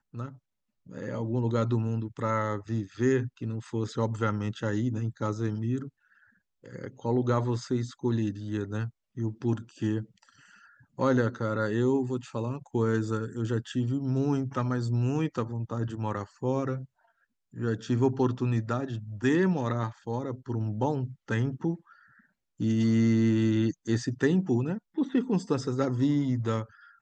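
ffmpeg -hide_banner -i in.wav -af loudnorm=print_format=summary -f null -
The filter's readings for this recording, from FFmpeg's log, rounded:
Input Integrated:    -29.2 LUFS
Input True Peak:     -11.8 dBTP
Input LRA:             4.7 LU
Input Threshold:     -39.7 LUFS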